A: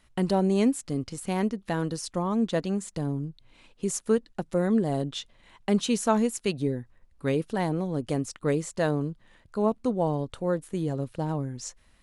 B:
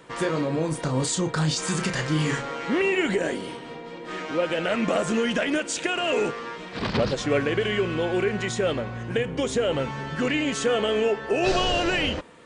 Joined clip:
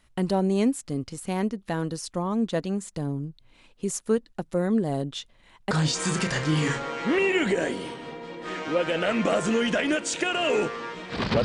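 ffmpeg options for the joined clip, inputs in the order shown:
-filter_complex "[0:a]apad=whole_dur=11.44,atrim=end=11.44,atrim=end=5.712[s0];[1:a]atrim=start=1.338:end=7.07[s1];[s0][s1]acrossfade=d=0.004:c1=hsin:c2=hsin"

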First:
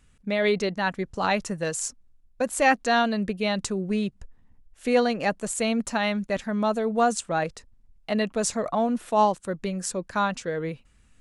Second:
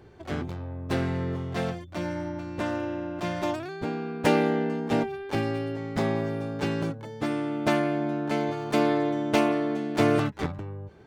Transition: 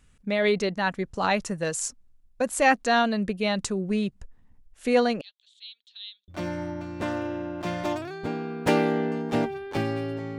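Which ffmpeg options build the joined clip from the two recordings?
-filter_complex "[0:a]asettb=1/sr,asplit=3[s0][s1][s2];[s0]atrim=end=5.214[s3];[s1]atrim=start=5.21:end=6.28,asetpts=PTS-STARTPTS,afade=t=in:d=0.004:c=qsin,afade=t=out:st=1.066:d=0.004:c=qsin,asuperpass=centerf=3600:order=4:qfactor=5.1[s4];[s2]atrim=start=6.276[s5];[s3][s4]acrossfade=d=0.004:c1=hsin:c2=qsin[s6];[s6][s5]acrossfade=d=0.004:c1=qsin:c2=hsin,apad=whole_dur=10.38,atrim=end=10.38,atrim=end=6.282[s7];[1:a]atrim=start=1.858:end=5.96[s8];[s7][s8]acrossfade=d=0.004:c1=hsin:c2=hsin"

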